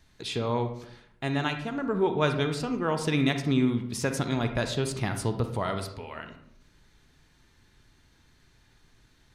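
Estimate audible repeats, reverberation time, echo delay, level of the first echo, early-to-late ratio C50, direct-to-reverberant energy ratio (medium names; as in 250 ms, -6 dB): no echo, 0.75 s, no echo, no echo, 8.5 dB, 7.0 dB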